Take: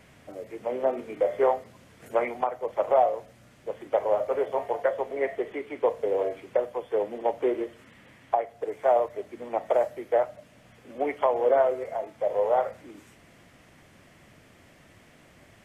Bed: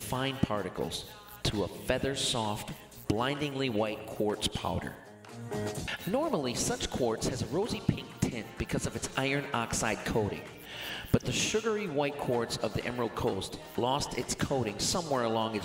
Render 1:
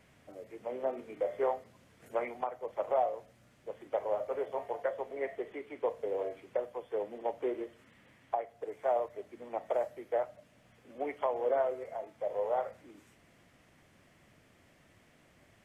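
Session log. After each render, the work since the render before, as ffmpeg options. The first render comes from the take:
-af "volume=0.376"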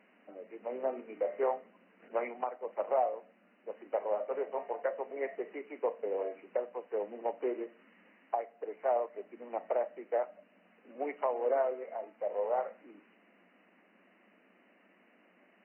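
-af "afftfilt=real='re*between(b*sr/4096,180,3000)':imag='im*between(b*sr/4096,180,3000)':win_size=4096:overlap=0.75"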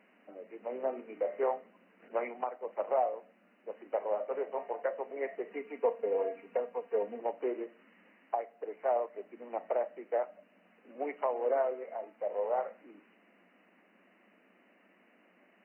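-filter_complex "[0:a]asettb=1/sr,asplit=3[s0][s1][s2];[s0]atrim=end=5.504[s3];[s1]atrim=start=5.5:end=7.2,asetpts=PTS-STARTPTS,afade=t=in:d=0.004:c=qsin,afade=t=out:st=1.696:d=0.004:c=qsin,aecho=1:1:4.3:0.76,atrim=end_sample=74970[s4];[s2]atrim=start=7.196[s5];[s3][s4]acrossfade=d=0.004:c1=hsin:c2=qsin[s6];[s6][s5]acrossfade=d=0.004:c1=qsin:c2=hsin"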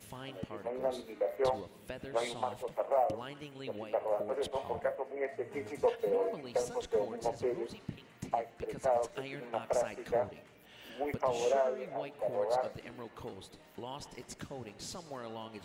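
-filter_complex "[1:a]volume=0.2[s0];[0:a][s0]amix=inputs=2:normalize=0"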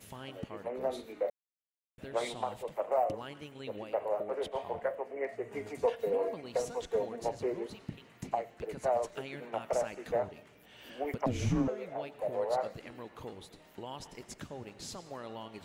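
-filter_complex "[0:a]asettb=1/sr,asplit=3[s0][s1][s2];[s0]atrim=end=4.084[s3];[s1]atrim=start=4.08:end=4.94,asetpts=PTS-STARTPTS,afade=t=in:d=0.004:c=qsin,afade=t=out:st=0.856:d=0.004:c=qsin,bass=f=250:g=-4,treble=f=4000:g=-5[s4];[s2]atrim=start=4.936[s5];[s3][s4]acrossfade=d=0.004:c1=hsin:c2=qsin[s6];[s6][s5]acrossfade=d=0.004:c1=qsin:c2=hsin,asettb=1/sr,asplit=3[s7][s8][s9];[s7]atrim=end=11.264[s10];[s8]atrim=start=11.26:end=11.68,asetpts=PTS-STARTPTS,afade=t=in:d=0.004:c=qsin,afade=t=out:st=0.416:d=0.004:c=qsin,afreqshift=-380[s11];[s9]atrim=start=11.676[s12];[s10][s11]acrossfade=d=0.004:c1=hsin:c2=qsin[s13];[s13][s12]acrossfade=d=0.004:c1=qsin:c2=hsin,asplit=3[s14][s15][s16];[s14]atrim=end=1.3,asetpts=PTS-STARTPTS,afade=t=out:st=1.296:d=0.004:c=hsin[s17];[s15]atrim=start=1.3:end=1.98,asetpts=PTS-STARTPTS,volume=0[s18];[s16]atrim=start=1.98,asetpts=PTS-STARTPTS,afade=t=in:d=0.004:c=hsin[s19];[s17][s18][s19]concat=n=3:v=0:a=1"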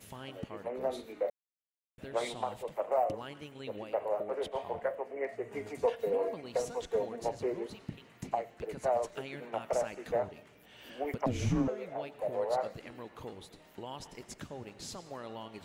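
-af anull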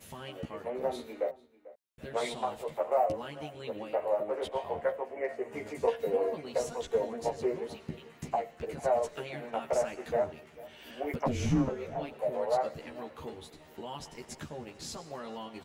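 -filter_complex "[0:a]asplit=2[s0][s1];[s1]adelay=13,volume=0.794[s2];[s0][s2]amix=inputs=2:normalize=0,asplit=2[s3][s4];[s4]adelay=443.1,volume=0.112,highshelf=f=4000:g=-9.97[s5];[s3][s5]amix=inputs=2:normalize=0"

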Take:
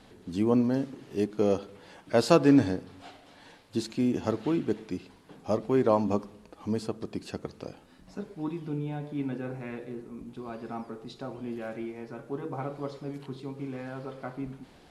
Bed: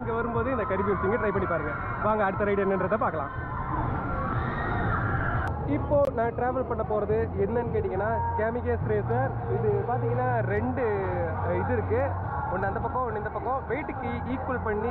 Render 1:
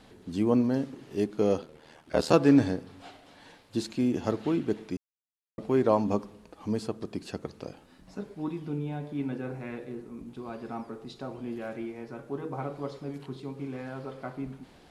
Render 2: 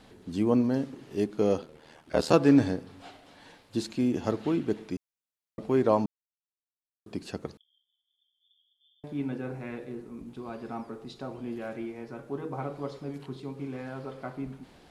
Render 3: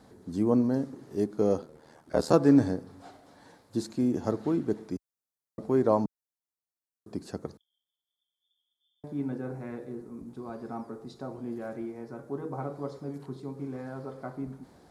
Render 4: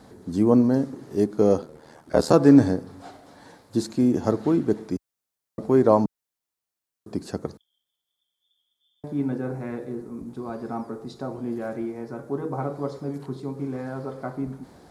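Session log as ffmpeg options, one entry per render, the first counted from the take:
-filter_complex "[0:a]asettb=1/sr,asplit=3[s0][s1][s2];[s0]atrim=end=1.614[s3];[s1]atrim=start=1.61:end=2.34,asetpts=PTS-STARTPTS,afade=t=in:d=0.004:c=qsin,afade=t=out:st=0.726:d=0.004:c=qsin,aeval=exprs='val(0)*sin(2*PI*39*n/s)':c=same[s4];[s2]atrim=start=2.336[s5];[s3][s4]acrossfade=d=0.004:c1=hsin:c2=qsin[s6];[s6][s5]acrossfade=d=0.004:c1=qsin:c2=hsin,asplit=3[s7][s8][s9];[s7]atrim=end=4.97,asetpts=PTS-STARTPTS,afade=t=out:st=4.966:d=0.004:c=hsin[s10];[s8]atrim=start=4.97:end=5.58,asetpts=PTS-STARTPTS,volume=0[s11];[s9]atrim=start=5.58,asetpts=PTS-STARTPTS,afade=t=in:d=0.004:c=hsin[s12];[s10][s11][s12]concat=n=3:v=0:a=1"
-filter_complex "[0:a]asettb=1/sr,asplit=3[s0][s1][s2];[s0]atrim=end=7.574[s3];[s1]atrim=start=7.57:end=9.04,asetpts=PTS-STARTPTS,afade=t=in:d=0.004:c=qsin,afade=t=out:st=1.466:d=0.004:c=qsin,asuperpass=centerf=3300:order=12:qfactor=7.5[s4];[s2]atrim=start=9.036[s5];[s3][s4]acrossfade=d=0.004:c1=hsin:c2=qsin[s6];[s6][s5]acrossfade=d=0.004:c1=qsin:c2=hsin,asplit=3[s7][s8][s9];[s7]atrim=end=6.06,asetpts=PTS-STARTPTS,afade=t=out:st=6.056:d=0.004:c=hsin[s10];[s8]atrim=start=6.06:end=7.06,asetpts=PTS-STARTPTS,volume=0[s11];[s9]atrim=start=7.06,asetpts=PTS-STARTPTS,afade=t=in:d=0.004:c=hsin[s12];[s10][s11][s12]concat=n=3:v=0:a=1"
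-af "highpass=51,equalizer=f=2800:w=1.5:g=-14"
-af "volume=2.11,alimiter=limit=0.708:level=0:latency=1"

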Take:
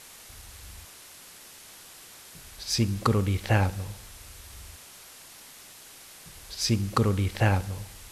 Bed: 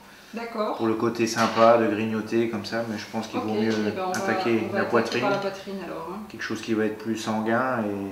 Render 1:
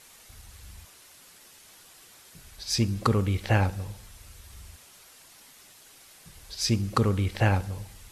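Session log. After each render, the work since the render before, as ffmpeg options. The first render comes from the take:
-af "afftdn=nr=6:nf=-49"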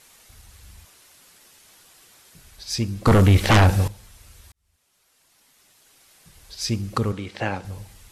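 -filter_complex "[0:a]asettb=1/sr,asplit=3[s0][s1][s2];[s0]atrim=end=3.074[s3];[s1]atrim=start=3.07:end=3.88,asetpts=PTS-STARTPTS,afade=t=in:d=0.004:c=qsin,afade=t=out:st=0.806:d=0.004:c=qsin,aeval=exprs='0.316*sin(PI/2*3.55*val(0)/0.316)':c=same[s4];[s2]atrim=start=3.876[s5];[s3][s4]acrossfade=d=0.004:c1=hsin:c2=qsin[s6];[s6][s5]acrossfade=d=0.004:c1=qsin:c2=hsin,asettb=1/sr,asplit=3[s7][s8][s9];[s7]atrim=end=7.124[s10];[s8]atrim=start=7.12:end=7.65,asetpts=PTS-STARTPTS,afade=t=in:d=0.004:c=qsin,afade=t=out:st=0.526:d=0.004:c=qsin,highpass=180,lowpass=7200[s11];[s9]atrim=start=7.646[s12];[s10][s11]acrossfade=d=0.004:c1=hsin:c2=qsin[s13];[s13][s12]acrossfade=d=0.004:c1=qsin:c2=hsin,asplit=2[s14][s15];[s14]atrim=end=4.52,asetpts=PTS-STARTPTS,afade=t=out:st=4.516:d=0.004:c=hsin[s16];[s15]atrim=start=4.52,asetpts=PTS-STARTPTS,afade=t=in:d=2.1[s17];[s16][s17]concat=n=2:v=0:a=1"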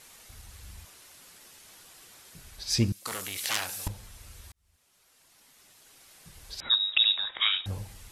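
-filter_complex "[0:a]asettb=1/sr,asplit=3[s0][s1][s2];[s0]atrim=end=2.924[s3];[s1]atrim=start=2.92:end=3.87,asetpts=PTS-STARTPTS,afade=t=in:d=0.004:c=qsin,afade=t=out:st=0.946:d=0.004:c=qsin,aderivative[s4];[s2]atrim=start=3.866[s5];[s3][s4]acrossfade=d=0.004:c1=hsin:c2=qsin[s6];[s6][s5]acrossfade=d=0.004:c1=qsin:c2=hsin,asettb=1/sr,asplit=3[s7][s8][s9];[s7]atrim=end=6.604[s10];[s8]atrim=start=6.6:end=7.66,asetpts=PTS-STARTPTS,afade=t=in:d=0.004:c=qsin,afade=t=out:st=1.056:d=0.004:c=qsin,lowpass=f=3300:t=q:w=0.5098,lowpass=f=3300:t=q:w=0.6013,lowpass=f=3300:t=q:w=0.9,lowpass=f=3300:t=q:w=2.563,afreqshift=-3900[s11];[s9]atrim=start=7.656[s12];[s10][s11]acrossfade=d=0.004:c1=hsin:c2=qsin[s13];[s13][s12]acrossfade=d=0.004:c1=qsin:c2=hsin"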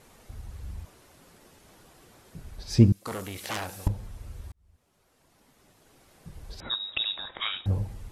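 -af "tiltshelf=f=1200:g=9"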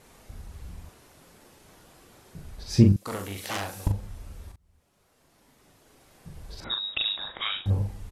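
-filter_complex "[0:a]asplit=2[s0][s1];[s1]adelay=40,volume=0.562[s2];[s0][s2]amix=inputs=2:normalize=0"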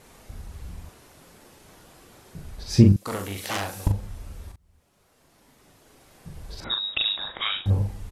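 -af "volume=1.41,alimiter=limit=0.708:level=0:latency=1"

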